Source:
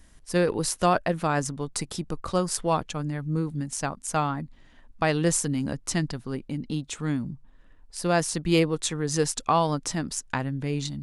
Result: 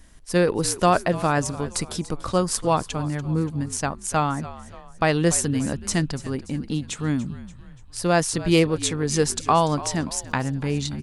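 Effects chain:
0:10.05–0:10.50: surface crackle 16 per second → 70 per second −44 dBFS
echo with shifted repeats 289 ms, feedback 48%, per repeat −59 Hz, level −16 dB
level +3.5 dB

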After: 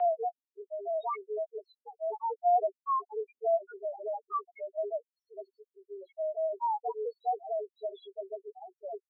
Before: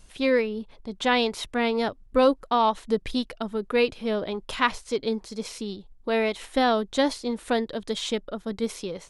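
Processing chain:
slices reordered back to front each 144 ms, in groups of 3
spectral peaks only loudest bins 1
single-sideband voice off tune +190 Hz 220–2,800 Hz

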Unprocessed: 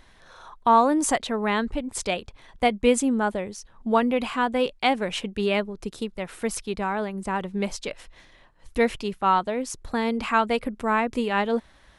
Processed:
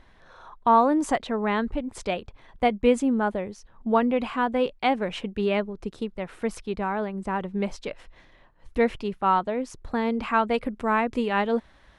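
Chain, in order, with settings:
low-pass filter 2,000 Hz 6 dB per octave, from 0:10.54 3,600 Hz

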